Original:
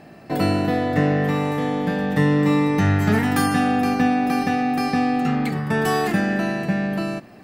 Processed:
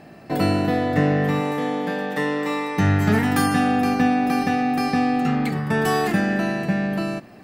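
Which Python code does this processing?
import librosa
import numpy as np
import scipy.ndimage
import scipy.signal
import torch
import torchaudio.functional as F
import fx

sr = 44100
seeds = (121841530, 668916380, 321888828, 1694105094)

y = fx.highpass(x, sr, hz=fx.line((1.4, 170.0), (2.77, 600.0)), slope=12, at=(1.4, 2.77), fade=0.02)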